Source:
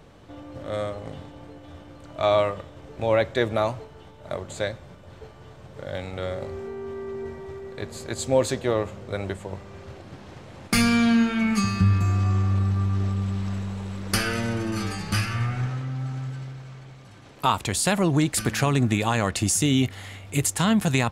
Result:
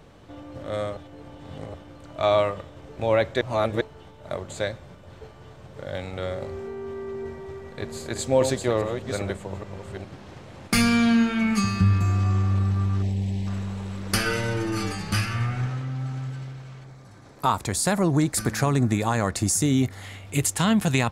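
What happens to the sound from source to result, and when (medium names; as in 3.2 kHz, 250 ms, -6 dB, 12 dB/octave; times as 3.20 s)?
0.97–1.74 s: reverse
3.41–3.81 s: reverse
7.18–10.06 s: chunks repeated in reverse 409 ms, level -6.5 dB
13.02–13.47 s: Butterworth band-stop 1.3 kHz, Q 1.2
14.25–14.92 s: comb 6.6 ms
16.84–20.02 s: peaking EQ 2.9 kHz -11 dB 0.59 oct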